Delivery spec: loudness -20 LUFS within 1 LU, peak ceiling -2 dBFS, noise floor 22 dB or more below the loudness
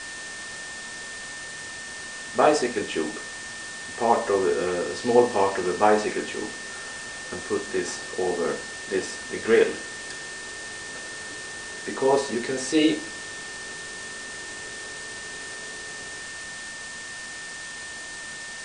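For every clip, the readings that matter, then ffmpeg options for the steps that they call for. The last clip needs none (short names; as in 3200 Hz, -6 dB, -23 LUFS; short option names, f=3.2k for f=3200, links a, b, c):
steady tone 1800 Hz; tone level -37 dBFS; noise floor -37 dBFS; noise floor target -50 dBFS; loudness -27.5 LUFS; peak -4.5 dBFS; loudness target -20.0 LUFS
-> -af "bandreject=f=1.8k:w=30"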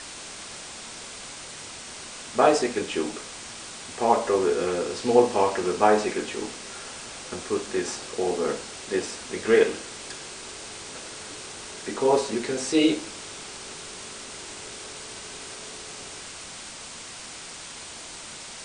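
steady tone none; noise floor -40 dBFS; noise floor target -50 dBFS
-> -af "afftdn=nr=10:nf=-40"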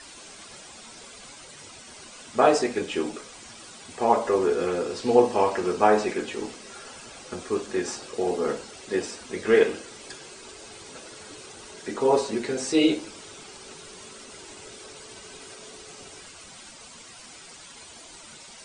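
noise floor -46 dBFS; noise floor target -47 dBFS
-> -af "afftdn=nr=6:nf=-46"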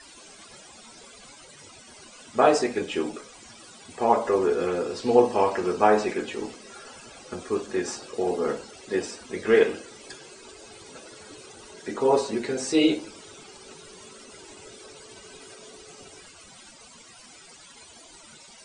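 noise floor -49 dBFS; loudness -24.5 LUFS; peak -5.0 dBFS; loudness target -20.0 LUFS
-> -af "volume=4.5dB,alimiter=limit=-2dB:level=0:latency=1"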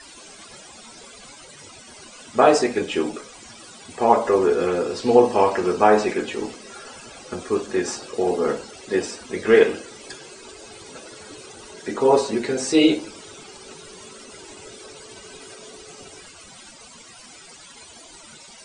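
loudness -20.5 LUFS; peak -2.0 dBFS; noise floor -45 dBFS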